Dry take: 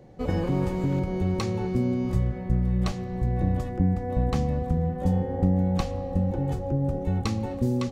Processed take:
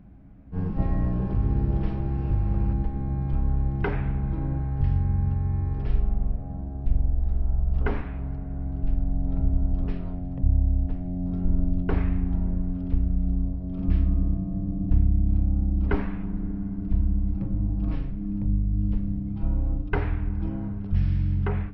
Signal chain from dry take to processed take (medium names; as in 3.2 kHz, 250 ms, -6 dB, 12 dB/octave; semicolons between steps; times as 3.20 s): treble shelf 6.2 kHz -9 dB; wide varispeed 0.364×; tone controls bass -3 dB, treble -4 dB; trim +4.5 dB